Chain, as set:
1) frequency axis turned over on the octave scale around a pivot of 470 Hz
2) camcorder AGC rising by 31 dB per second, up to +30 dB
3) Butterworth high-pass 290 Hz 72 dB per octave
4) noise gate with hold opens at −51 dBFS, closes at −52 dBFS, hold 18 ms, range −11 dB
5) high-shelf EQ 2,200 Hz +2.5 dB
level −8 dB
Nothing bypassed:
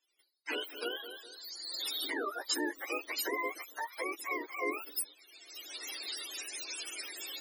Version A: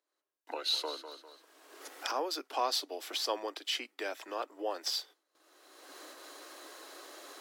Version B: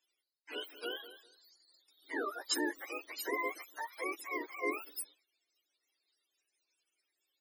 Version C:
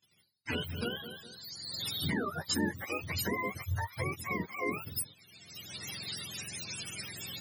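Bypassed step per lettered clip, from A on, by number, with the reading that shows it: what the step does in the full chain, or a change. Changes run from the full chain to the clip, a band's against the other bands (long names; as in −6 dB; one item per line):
1, 2 kHz band −9.0 dB
2, change in crest factor +3.0 dB
3, 250 Hz band +6.0 dB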